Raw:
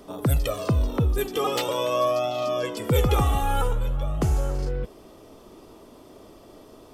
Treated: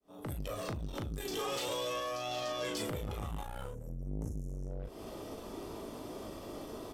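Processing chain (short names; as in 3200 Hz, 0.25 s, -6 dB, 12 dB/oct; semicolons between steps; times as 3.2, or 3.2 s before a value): opening faded in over 1.42 s; 0.8–2.87 bell 5700 Hz +8.5 dB 2.3 oct; 3.71–4.8 spectral delete 520–5300 Hz; limiter -20.5 dBFS, peak gain reduction 11.5 dB; compressor 10:1, threshold -36 dBFS, peak gain reduction 13 dB; one-sided clip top -41 dBFS, bottom -31 dBFS; early reflections 18 ms -8 dB, 38 ms -4 dB; core saturation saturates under 260 Hz; gain +2.5 dB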